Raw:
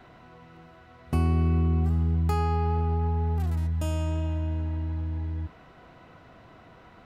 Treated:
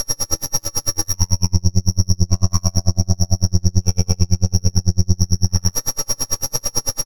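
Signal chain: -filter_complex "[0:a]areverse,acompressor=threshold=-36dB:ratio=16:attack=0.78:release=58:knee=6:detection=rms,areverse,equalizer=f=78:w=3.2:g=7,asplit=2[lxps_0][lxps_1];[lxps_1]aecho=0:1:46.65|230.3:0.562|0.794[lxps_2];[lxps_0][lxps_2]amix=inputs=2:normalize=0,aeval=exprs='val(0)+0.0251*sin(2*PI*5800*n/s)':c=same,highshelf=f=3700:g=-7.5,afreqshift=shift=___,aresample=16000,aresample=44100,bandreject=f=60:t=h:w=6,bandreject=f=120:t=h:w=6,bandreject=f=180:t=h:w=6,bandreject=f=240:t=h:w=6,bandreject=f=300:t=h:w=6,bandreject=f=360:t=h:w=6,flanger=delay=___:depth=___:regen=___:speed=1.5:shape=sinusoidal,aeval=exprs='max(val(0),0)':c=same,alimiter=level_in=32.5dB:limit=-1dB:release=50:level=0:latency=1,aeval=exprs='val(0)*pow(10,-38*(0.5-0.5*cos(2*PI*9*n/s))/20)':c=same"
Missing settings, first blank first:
-170, 6.8, 5.6, 53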